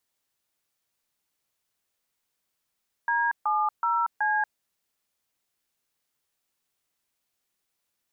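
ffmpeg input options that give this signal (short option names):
-f lavfi -i "aevalsrc='0.0596*clip(min(mod(t,0.375),0.234-mod(t,0.375))/0.002,0,1)*(eq(floor(t/0.375),0)*(sin(2*PI*941*mod(t,0.375))+sin(2*PI*1633*mod(t,0.375)))+eq(floor(t/0.375),1)*(sin(2*PI*852*mod(t,0.375))+sin(2*PI*1209*mod(t,0.375)))+eq(floor(t/0.375),2)*(sin(2*PI*941*mod(t,0.375))+sin(2*PI*1336*mod(t,0.375)))+eq(floor(t/0.375),3)*(sin(2*PI*852*mod(t,0.375))+sin(2*PI*1633*mod(t,0.375))))':d=1.5:s=44100"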